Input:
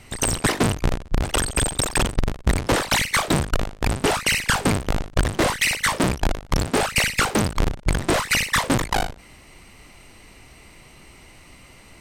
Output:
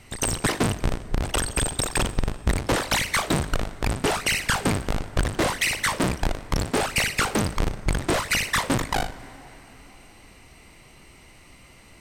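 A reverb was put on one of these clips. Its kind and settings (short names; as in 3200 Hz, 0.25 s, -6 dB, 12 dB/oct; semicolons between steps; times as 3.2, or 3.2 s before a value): plate-style reverb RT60 4.1 s, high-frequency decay 0.55×, DRR 15.5 dB; gain -3 dB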